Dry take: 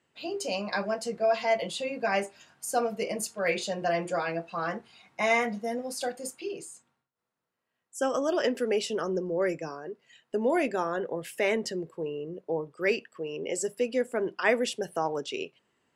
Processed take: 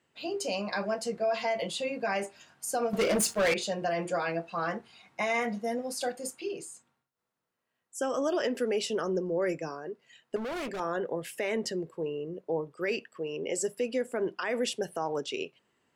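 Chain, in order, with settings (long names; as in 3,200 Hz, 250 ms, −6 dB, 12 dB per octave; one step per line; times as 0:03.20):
0:10.36–0:10.80: hard clipping −33.5 dBFS, distortion −14 dB
brickwall limiter −21 dBFS, peak gain reduction 10.5 dB
0:02.93–0:03.54: leveller curve on the samples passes 3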